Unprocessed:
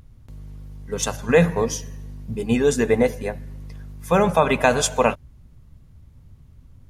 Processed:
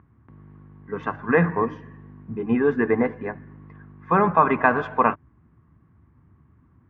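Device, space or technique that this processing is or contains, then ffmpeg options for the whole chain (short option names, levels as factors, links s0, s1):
bass cabinet: -af "highpass=f=80:w=0.5412,highpass=f=80:w=1.3066,equalizer=f=89:t=q:w=4:g=-7,equalizer=f=130:t=q:w=4:g=-5,equalizer=f=320:t=q:w=4:g=7,equalizer=f=550:t=q:w=4:g=-9,equalizer=f=1100:t=q:w=4:g=9,equalizer=f=1700:t=q:w=4:g=5,lowpass=f=2000:w=0.5412,lowpass=f=2000:w=1.3066,volume=0.841"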